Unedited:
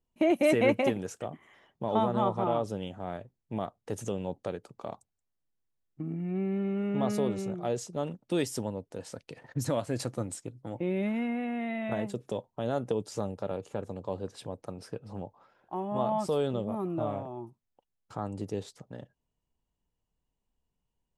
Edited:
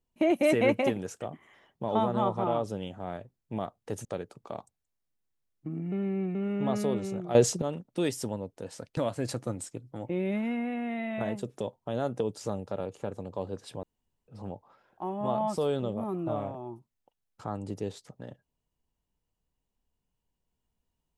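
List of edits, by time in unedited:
0:04.05–0:04.39: remove
0:06.26–0:06.69: reverse
0:07.69–0:07.96: clip gain +11.5 dB
0:09.31–0:09.68: remove
0:14.54–0:14.99: fill with room tone

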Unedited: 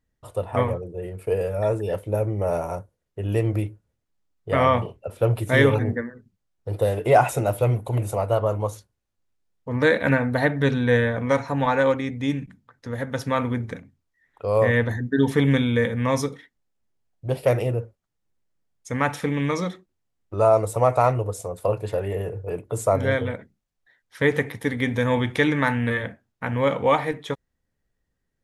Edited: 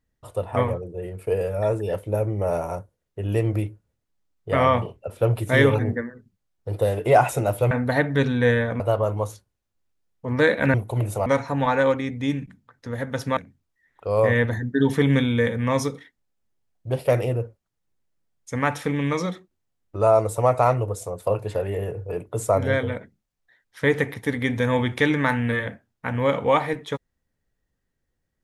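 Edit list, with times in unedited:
0:07.71–0:08.23: swap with 0:10.17–0:11.26
0:13.37–0:13.75: remove

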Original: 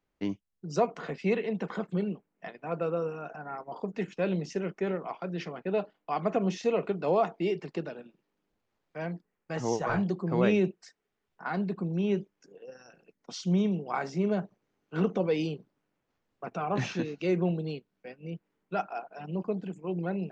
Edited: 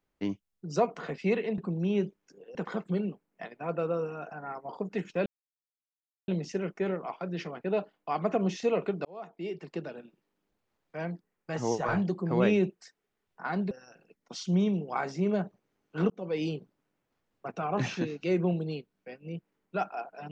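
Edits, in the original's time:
0:04.29: splice in silence 1.02 s
0:07.06–0:08.00: fade in
0:11.72–0:12.69: move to 0:01.58
0:15.08–0:15.46: fade in

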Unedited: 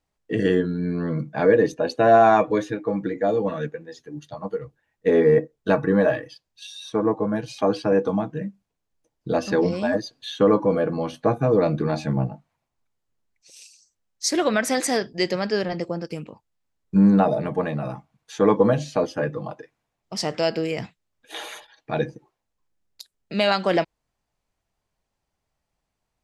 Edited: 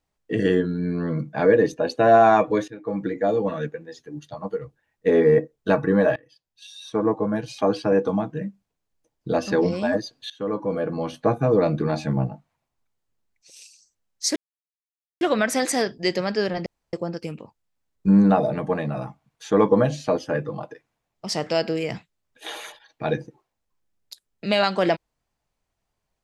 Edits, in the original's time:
0:02.68–0:03.02: fade in, from −17.5 dB
0:06.16–0:07.04: fade in, from −22.5 dB
0:10.30–0:11.12: fade in, from −17.5 dB
0:14.36: splice in silence 0.85 s
0:15.81: splice in room tone 0.27 s

